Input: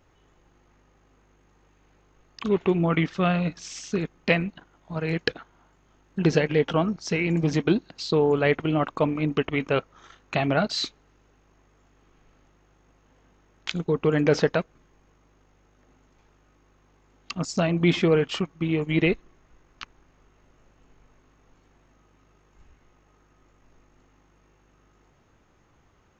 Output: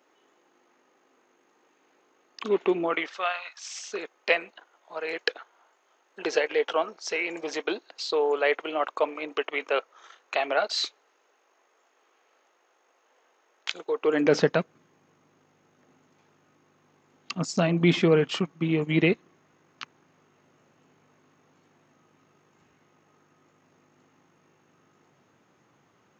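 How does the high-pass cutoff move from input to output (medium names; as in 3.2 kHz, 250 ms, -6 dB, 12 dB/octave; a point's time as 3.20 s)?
high-pass 24 dB/octave
2.77 s 280 Hz
3.48 s 1 kHz
3.91 s 440 Hz
13.97 s 440 Hz
14.44 s 130 Hz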